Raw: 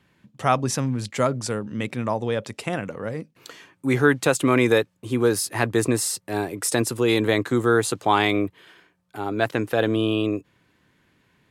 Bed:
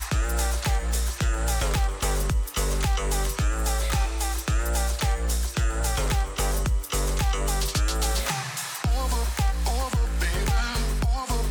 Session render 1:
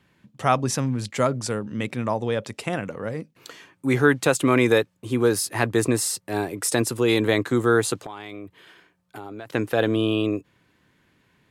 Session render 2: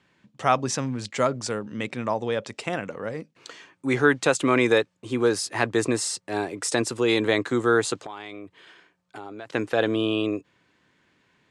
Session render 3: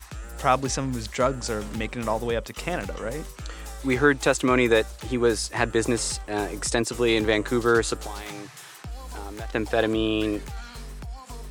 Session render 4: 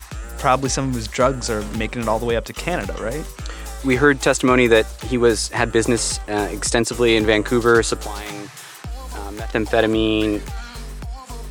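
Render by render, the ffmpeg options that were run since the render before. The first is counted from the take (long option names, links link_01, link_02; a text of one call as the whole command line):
ffmpeg -i in.wav -filter_complex "[0:a]asplit=3[link_01][link_02][link_03];[link_01]afade=type=out:start_time=7.99:duration=0.02[link_04];[link_02]acompressor=threshold=-32dB:ratio=12:attack=3.2:release=140:knee=1:detection=peak,afade=type=in:start_time=7.99:duration=0.02,afade=type=out:start_time=9.49:duration=0.02[link_05];[link_03]afade=type=in:start_time=9.49:duration=0.02[link_06];[link_04][link_05][link_06]amix=inputs=3:normalize=0" out.wav
ffmpeg -i in.wav -af "lowpass=frequency=8300:width=0.5412,lowpass=frequency=8300:width=1.3066,lowshelf=frequency=170:gain=-9.5" out.wav
ffmpeg -i in.wav -i bed.wav -filter_complex "[1:a]volume=-13dB[link_01];[0:a][link_01]amix=inputs=2:normalize=0" out.wav
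ffmpeg -i in.wav -af "volume=6dB,alimiter=limit=-2dB:level=0:latency=1" out.wav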